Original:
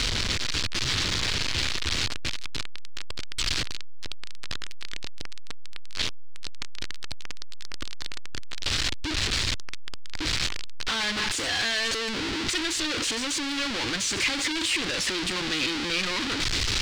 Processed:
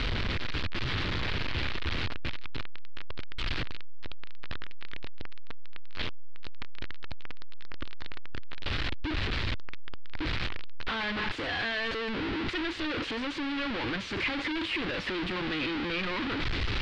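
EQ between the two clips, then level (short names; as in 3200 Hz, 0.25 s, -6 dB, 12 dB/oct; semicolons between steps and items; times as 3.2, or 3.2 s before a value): air absorption 370 m; 0.0 dB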